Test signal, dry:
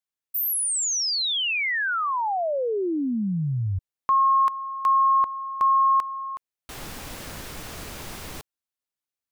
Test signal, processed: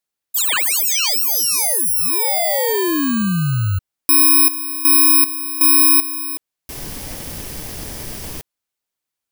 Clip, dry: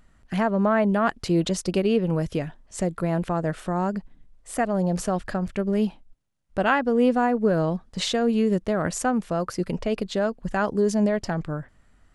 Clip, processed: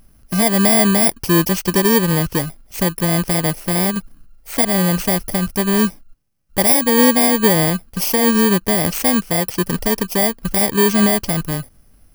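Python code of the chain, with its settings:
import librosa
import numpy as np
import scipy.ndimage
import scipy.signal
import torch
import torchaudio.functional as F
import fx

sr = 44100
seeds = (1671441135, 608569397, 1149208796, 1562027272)

y = fx.bit_reversed(x, sr, seeds[0], block=32)
y = F.gain(torch.from_numpy(y), 7.5).numpy()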